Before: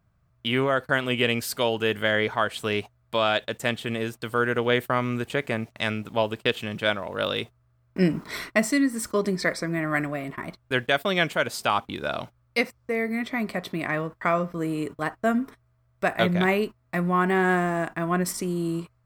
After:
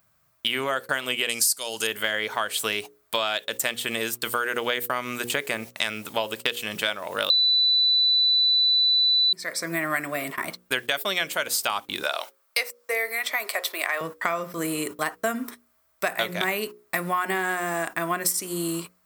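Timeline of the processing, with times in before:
1.29–1.87 band shelf 7100 Hz +14.5 dB
7.3–9.33 bleep 3980 Hz -7 dBFS
12.03–14.01 HPF 440 Hz 24 dB/oct
whole clip: RIAA curve recording; notches 60/120/180/240/300/360/420/480/540 Hz; compressor, threshold -27 dBFS; gain +5 dB

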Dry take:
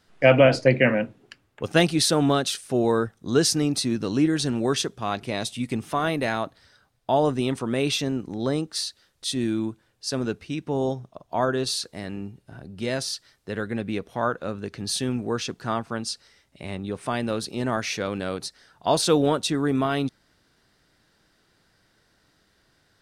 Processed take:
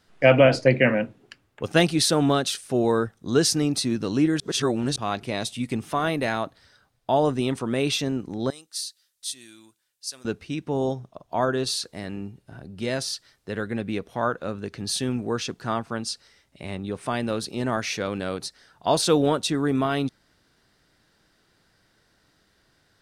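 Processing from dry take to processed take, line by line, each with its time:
4.4–4.96 reverse
8.5–10.25 pre-emphasis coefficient 0.97

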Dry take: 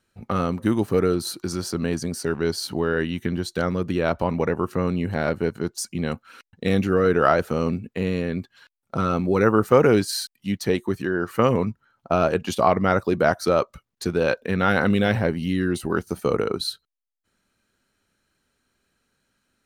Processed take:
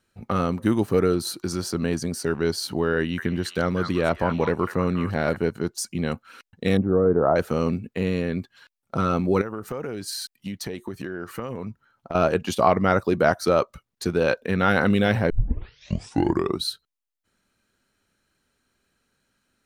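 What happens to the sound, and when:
2.98–5.37 delay with a stepping band-pass 0.198 s, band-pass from 1400 Hz, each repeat 1.4 oct, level -3 dB
6.77–7.36 LPF 1000 Hz 24 dB/oct
9.41–12.15 compressor 12:1, threshold -27 dBFS
15.3 tape start 1.34 s

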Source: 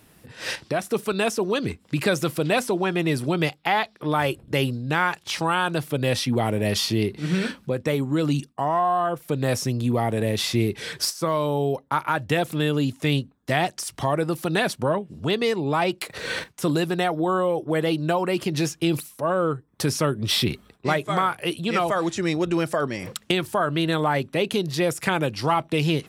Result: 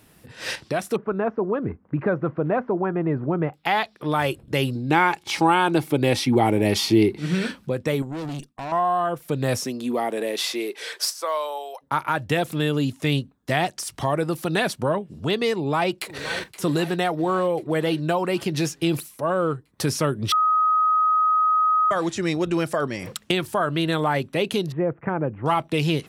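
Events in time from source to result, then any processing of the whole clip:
0.96–3.54 LPF 1500 Hz 24 dB/oct
4.75–7.18 small resonant body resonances 330/820/2200 Hz, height 10 dB, ringing for 25 ms
8.02–8.72 tube stage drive 28 dB, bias 0.75
9.61–11.81 HPF 190 Hz -> 730 Hz 24 dB/oct
15.55–16.53 echo throw 0.52 s, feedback 65%, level -15 dB
20.32–21.91 bleep 1260 Hz -16 dBFS
24.72–25.46 Gaussian blur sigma 5.9 samples

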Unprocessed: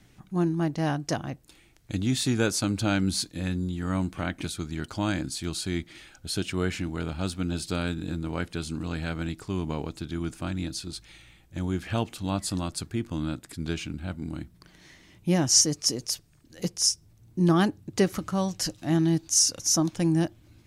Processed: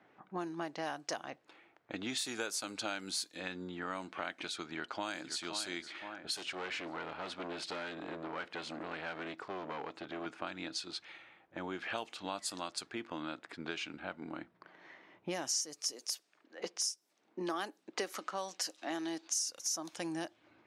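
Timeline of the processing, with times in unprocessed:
4.61–5.4 echo throw 0.52 s, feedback 40%, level -10 dB
6.36–10.26 overloaded stage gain 32 dB
15.93–19.37 HPF 210 Hz 24 dB/oct
whole clip: HPF 560 Hz 12 dB/oct; low-pass opened by the level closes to 1200 Hz, open at -28 dBFS; compressor 4:1, threshold -42 dBFS; gain +5 dB

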